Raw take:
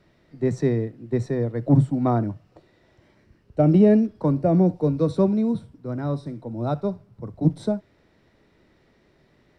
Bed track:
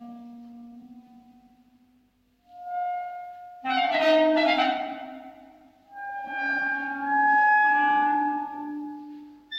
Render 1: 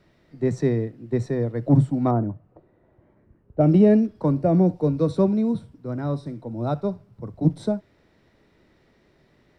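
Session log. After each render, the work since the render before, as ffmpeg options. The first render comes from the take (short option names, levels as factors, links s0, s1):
-filter_complex "[0:a]asettb=1/sr,asplit=3[s0][s1][s2];[s0]atrim=end=2.114[s3];[s1]atrim=start=2.11:end=3.61,asetpts=PTS-STARTPTS,afade=t=in:d=0.004:c=qsin,afade=t=out:st=1.496:d=0.004:c=qsin,lowpass=1100[s4];[s2]atrim=start=3.606[s5];[s3][s4]acrossfade=d=0.004:c1=hsin:c2=qsin[s6];[s6][s5]acrossfade=d=0.004:c1=qsin:c2=hsin"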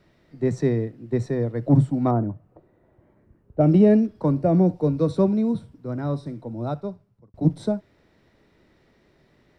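-filter_complex "[0:a]asplit=2[s0][s1];[s0]atrim=end=7.34,asetpts=PTS-STARTPTS,afade=t=out:st=6.45:d=0.89[s2];[s1]atrim=start=7.34,asetpts=PTS-STARTPTS,afade=t=in:d=0.004:c=hsin[s3];[s2][s3]concat=n=2:v=0:a=1"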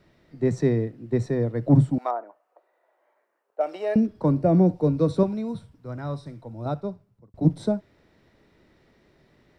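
-filter_complex "[0:a]asettb=1/sr,asplit=3[s0][s1][s2];[s0]atrim=end=1.984[s3];[s1]atrim=start=1.98:end=3.96,asetpts=PTS-STARTPTS,afade=t=in:d=0.004:c=qsin,afade=t=out:st=1.976:d=0.004:c=qsin,highpass=f=600:w=0.5412,highpass=f=600:w=1.3066[s4];[s2]atrim=start=3.956[s5];[s3][s4]acrossfade=d=0.004:c1=hsin:c2=qsin[s6];[s6][s5]acrossfade=d=0.004:c1=qsin:c2=hsin,asettb=1/sr,asplit=3[s7][s8][s9];[s7]atrim=end=5.234[s10];[s8]atrim=start=5.23:end=6.66,asetpts=PTS-STARTPTS,afade=t=in:d=0.004:c=qsin,afade=t=out:st=1.426:d=0.004:c=qsin,equalizer=f=280:t=o:w=1.9:g=-9[s11];[s9]atrim=start=6.656[s12];[s10][s11]acrossfade=d=0.004:c1=hsin:c2=qsin[s13];[s13][s12]acrossfade=d=0.004:c1=qsin:c2=hsin"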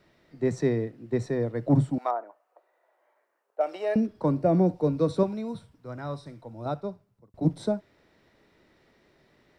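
-af "lowshelf=f=270:g=-7"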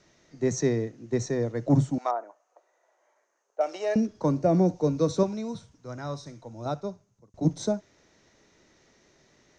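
-af "lowpass=f=6400:t=q:w=12"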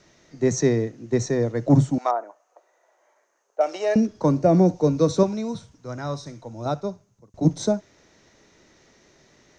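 -af "volume=1.78"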